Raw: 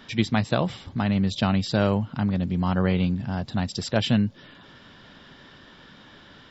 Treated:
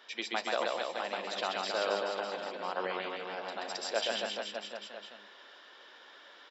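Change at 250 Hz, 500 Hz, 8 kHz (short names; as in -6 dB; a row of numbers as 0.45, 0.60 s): -24.0 dB, -5.0 dB, n/a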